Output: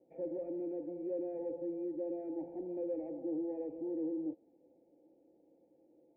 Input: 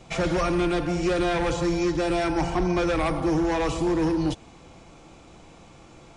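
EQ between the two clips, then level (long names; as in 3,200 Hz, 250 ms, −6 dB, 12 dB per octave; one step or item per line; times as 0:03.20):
formant resonators in series u
formant filter e
+7.0 dB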